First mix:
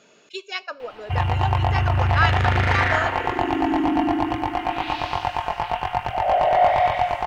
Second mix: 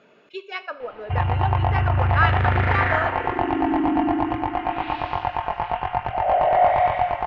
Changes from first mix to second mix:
speech: send +10.0 dB; master: add LPF 2300 Hz 12 dB/oct

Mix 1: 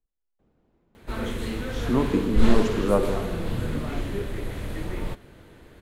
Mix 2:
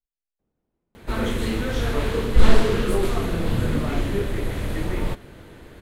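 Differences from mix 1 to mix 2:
speech -11.5 dB; background +5.5 dB

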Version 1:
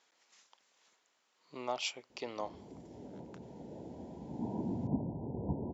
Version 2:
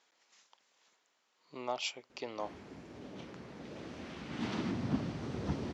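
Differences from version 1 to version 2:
background: remove Chebyshev low-pass 990 Hz, order 10; master: add LPF 8000 Hz

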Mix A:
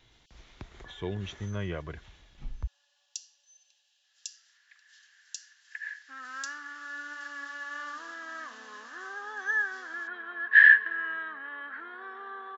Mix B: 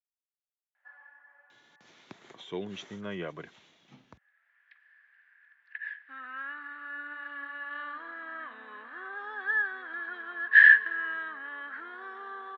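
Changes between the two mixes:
speech: entry +1.50 s; first sound: muted; master: add HPF 170 Hz 24 dB/oct

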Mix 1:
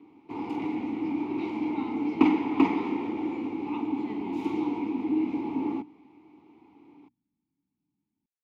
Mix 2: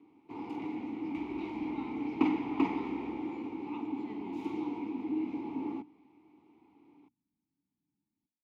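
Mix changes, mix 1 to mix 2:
speech -4.0 dB; first sound -7.0 dB; second sound: unmuted

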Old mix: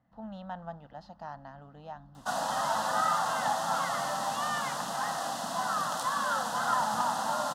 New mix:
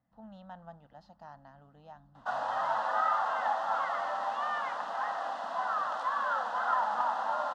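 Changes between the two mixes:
speech -7.5 dB; background: add BPF 500–2100 Hz

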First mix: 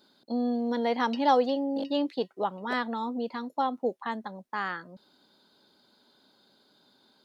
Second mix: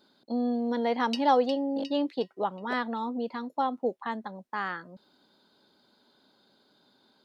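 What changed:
background: remove tape spacing loss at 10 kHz 28 dB; master: add high shelf 4500 Hz -5.5 dB

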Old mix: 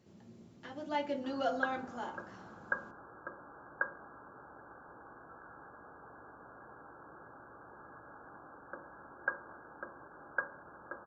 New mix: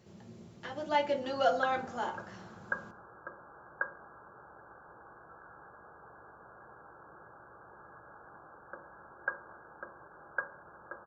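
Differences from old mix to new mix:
speech +6.5 dB; master: add bell 270 Hz -11.5 dB 0.31 oct

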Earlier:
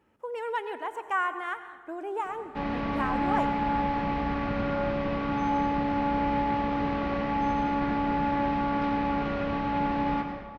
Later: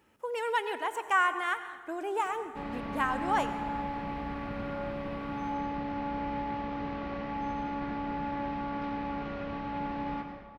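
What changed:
speech: add high shelf 2500 Hz +11 dB; background -7.5 dB

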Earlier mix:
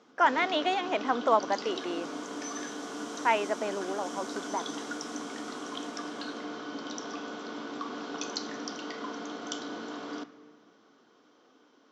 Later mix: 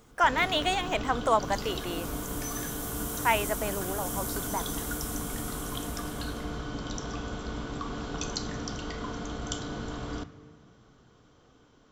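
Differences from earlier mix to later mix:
speech: add tilt +2 dB/oct; master: remove Chebyshev band-pass 260–5800 Hz, order 3

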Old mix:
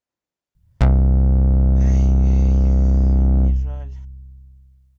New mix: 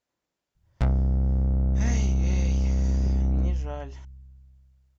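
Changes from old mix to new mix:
speech +6.0 dB; background -8.5 dB

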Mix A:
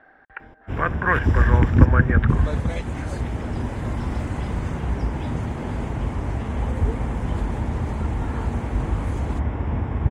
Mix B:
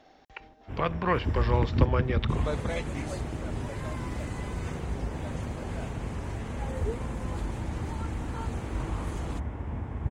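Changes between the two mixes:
speech: remove synth low-pass 1600 Hz, resonance Q 8.2; first sound -10.0 dB

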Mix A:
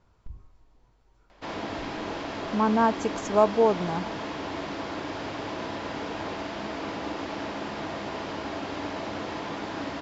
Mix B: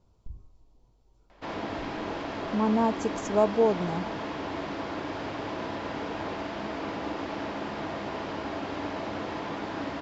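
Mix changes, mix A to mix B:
speech: add bell 1700 Hz -14.5 dB 1.3 oct; background: add high shelf 4100 Hz -7 dB

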